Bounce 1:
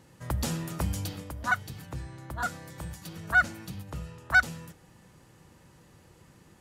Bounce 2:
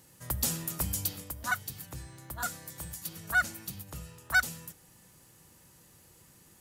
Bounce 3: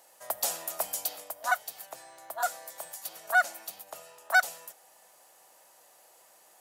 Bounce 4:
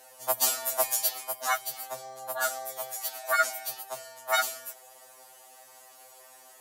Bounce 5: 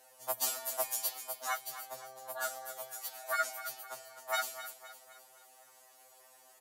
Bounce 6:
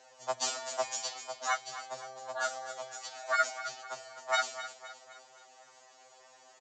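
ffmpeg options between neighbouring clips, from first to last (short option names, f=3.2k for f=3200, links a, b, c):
-af "aemphasis=mode=production:type=75fm,volume=-5dB"
-af "highpass=f=670:t=q:w=4.9"
-af "afftfilt=real='re*2.45*eq(mod(b,6),0)':imag='im*2.45*eq(mod(b,6),0)':win_size=2048:overlap=0.75,volume=8.5dB"
-af "aecho=1:1:257|514|771|1028|1285:0.224|0.11|0.0538|0.0263|0.0129,volume=-8dB"
-af "aresample=16000,aresample=44100,volume=4.5dB"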